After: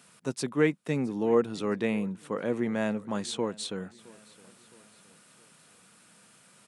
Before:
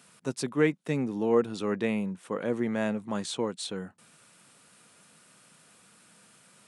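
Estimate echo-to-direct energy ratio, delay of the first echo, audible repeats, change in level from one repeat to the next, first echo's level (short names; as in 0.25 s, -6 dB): -22.0 dB, 0.665 s, 2, -6.0 dB, -23.0 dB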